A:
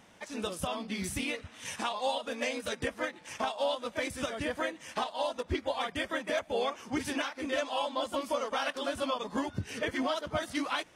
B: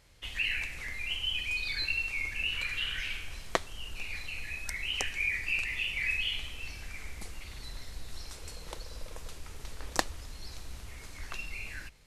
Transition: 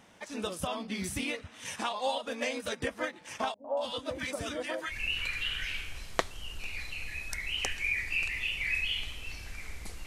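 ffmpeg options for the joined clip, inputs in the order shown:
-filter_complex "[0:a]asettb=1/sr,asplit=3[s0][s1][s2];[s0]atrim=end=3.544[s3];[s1]atrim=start=3.54:end=4.94,asetpts=PTS-STARTPTS,afade=t=in:d=0.004:c=qsin,afade=t=out:st=1.396:d=0.004:c=qsin,acrossover=split=280|1100[s4][s5][s6];[s5]adelay=100[s7];[s6]adelay=230[s8];[s4][s7][s8]amix=inputs=3:normalize=0,atrim=end_sample=61740[s9];[s2]atrim=start=4.936[s10];[s3][s9]acrossfade=d=0.004:c1=hsin:c2=qsin[s11];[s11][s10]acrossfade=d=0.004:c1=qsin:c2=hsin,apad=whole_dur=10.06,atrim=end=10.06,atrim=end=4.94,asetpts=PTS-STARTPTS[s12];[1:a]atrim=start=2.24:end=7.42,asetpts=PTS-STARTPTS[s13];[s12][s13]acrossfade=d=0.06:c1=tri:c2=tri"

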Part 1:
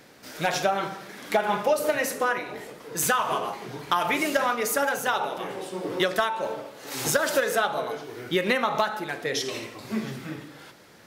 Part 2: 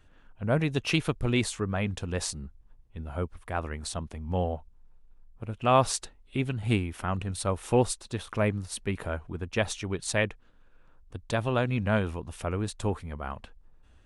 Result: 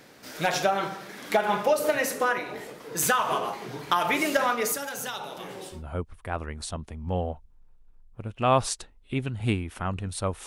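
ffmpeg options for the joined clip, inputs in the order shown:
-filter_complex "[0:a]asettb=1/sr,asplit=3[s0][s1][s2];[s0]atrim=end=4.724[s3];[s1]atrim=start=4.72:end=5.84,asetpts=PTS-STARTPTS,afade=t=in:d=0.004:c=qsin,afade=t=out:st=1.116:d=0.004:c=qsin,acrossover=split=190|3000[s4][s5][s6];[s5]acompressor=threshold=0.00794:ratio=2:attack=3.2:release=140:knee=2.83:detection=peak[s7];[s4][s7][s6]amix=inputs=3:normalize=0[s8];[s2]atrim=start=5.836[s9];[s3][s8]acrossfade=d=0.004:c1=hsin:c2=qsin[s10];[s10][s9]acrossfade=d=0.004:c1=qsin:c2=hsin,apad=whole_dur=10.46,atrim=end=10.46,atrim=end=5.84,asetpts=PTS-STARTPTS[s11];[1:a]atrim=start=2.89:end=7.69,asetpts=PTS-STARTPTS[s12];[s11][s12]acrossfade=d=0.18:c1=tri:c2=tri"

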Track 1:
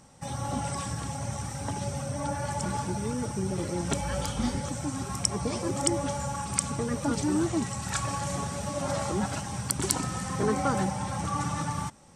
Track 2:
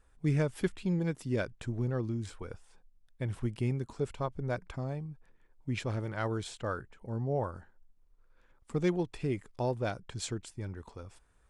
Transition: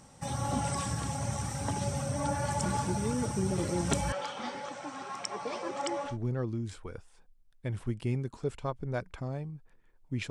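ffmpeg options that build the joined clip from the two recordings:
-filter_complex "[0:a]asettb=1/sr,asplit=3[s0][s1][s2];[s0]atrim=end=4.124[s3];[s1]atrim=start=4.12:end=6.18,asetpts=PTS-STARTPTS,afade=t=in:d=0.004:c=qsin,afade=t=out:st=2.056:d=0.004:c=qsin,highpass=520,lowpass=3400[s4];[s2]atrim=start=6.176[s5];[s3][s4]acrossfade=d=0.004:c1=hsin:c2=qsin[s6];[s6][s5]acrossfade=d=0.004:c1=qsin:c2=hsin,apad=whole_dur=10.3,atrim=end=10.3,atrim=end=6.18,asetpts=PTS-STARTPTS[s7];[1:a]atrim=start=1.58:end=5.86,asetpts=PTS-STARTPTS[s8];[s7][s8]acrossfade=d=0.16:c1=tri:c2=tri"

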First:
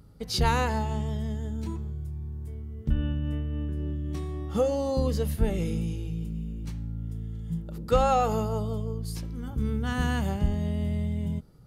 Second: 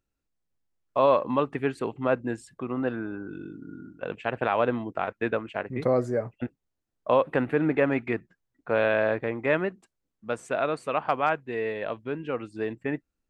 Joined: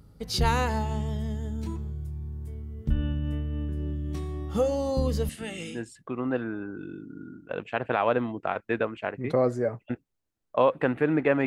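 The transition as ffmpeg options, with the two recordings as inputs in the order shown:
-filter_complex "[0:a]asettb=1/sr,asplit=3[s0][s1][s2];[s0]atrim=end=5.294[s3];[s1]atrim=start=5.29:end=5.84,asetpts=PTS-STARTPTS,afade=t=in:d=0.004:c=qsin,afade=t=out:st=0.546:d=0.004:c=qsin,highpass=310,equalizer=f=410:t=q:w=4:g=-9,equalizer=f=600:t=q:w=4:g=-6,equalizer=f=950:t=q:w=4:g=-9,equalizer=f=1900:t=q:w=4:g=5,equalizer=f=2900:t=q:w=4:g=9,equalizer=f=8200:t=q:w=4:g=10,lowpass=f=9600:w=0.5412,lowpass=f=9600:w=1.3066[s4];[s2]atrim=start=5.836[s5];[s3][s4]acrossfade=d=0.004:c1=hsin:c2=qsin[s6];[s6][s5]acrossfade=d=0.004:c1=qsin:c2=hsin,apad=whole_dur=11.46,atrim=end=11.46,atrim=end=5.84,asetpts=PTS-STARTPTS[s7];[1:a]atrim=start=2.22:end=7.98,asetpts=PTS-STARTPTS[s8];[s7][s8]acrossfade=d=0.14:c1=tri:c2=tri"

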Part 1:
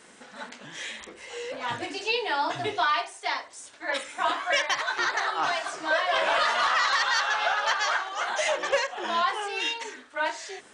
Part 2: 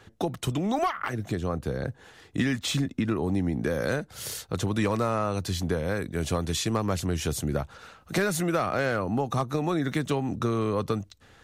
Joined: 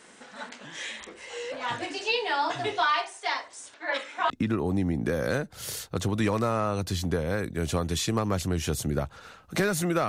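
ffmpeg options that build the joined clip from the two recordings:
-filter_complex "[0:a]asettb=1/sr,asplit=3[s0][s1][s2];[s0]atrim=end=3.744[s3];[s1]atrim=start=3.74:end=4.3,asetpts=PTS-STARTPTS,afade=t=in:d=0.004:c=qsin,afade=t=out:st=0.556:d=0.004:c=qsin,highpass=190,lowpass=4500[s4];[s2]atrim=start=4.296[s5];[s3][s4]acrossfade=d=0.004:c1=hsin:c2=qsin[s6];[s6][s5]acrossfade=d=0.004:c1=qsin:c2=hsin,apad=whole_dur=10.08,atrim=end=10.08,atrim=end=4.302[s7];[1:a]atrim=start=2.878:end=8.66[s8];[s7][s8]acrossfade=d=0.004:c1=hsin:c2=hsin"

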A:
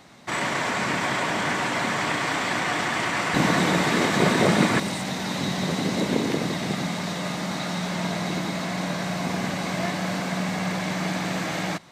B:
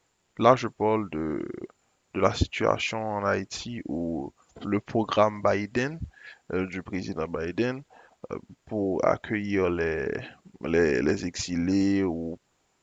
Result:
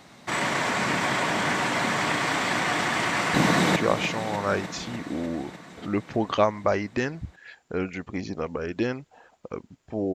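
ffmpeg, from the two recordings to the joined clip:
-filter_complex "[0:a]apad=whole_dur=10.14,atrim=end=10.14,atrim=end=3.762[s0];[1:a]atrim=start=2.548:end=8.93[s1];[s0][s1]acrossfade=d=0.004:c1=hsin:c2=hsin,asplit=2[s2][s3];[s3]afade=t=in:st=3.43:d=0.01,afade=t=out:st=3.76:d=0.01,aecho=0:1:300|600|900|1200|1500|1800|2100|2400|2700|3000|3300|3600:0.334965|0.251224|0.188418|0.141314|0.105985|0.0794889|0.0596167|0.0447125|0.0335344|0.0251508|0.0188631|0.0141473[s4];[s2][s4]amix=inputs=2:normalize=0"

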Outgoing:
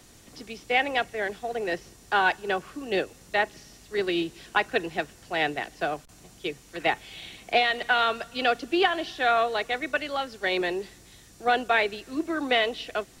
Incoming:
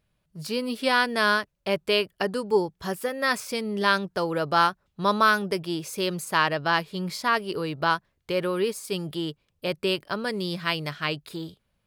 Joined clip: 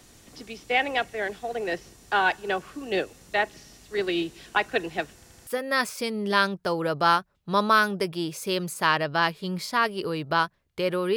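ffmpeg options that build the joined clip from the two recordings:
-filter_complex "[0:a]apad=whole_dur=11.16,atrim=end=11.16,asplit=4[s0][s1][s2][s3];[s0]atrim=end=5.232[s4];[s1]atrim=start=5.148:end=5.232[s5];[s2]atrim=start=5.148:end=5.232[s6];[s3]atrim=start=5.148:end=5.232[s7];[1:a]atrim=start=2.978:end=8.67[s8];[s4][s5]acrossfade=d=0.004:c1=hsin:c2=hsin[s9];[s9][s6]acrossfade=d=0.004:c1=hsin:c2=hsin[s10];[s10][s7]acrossfade=d=0.004:c1=hsin:c2=hsin[s11];[s11][s8]acrossfade=d=0.004:c1=hsin:c2=hsin"

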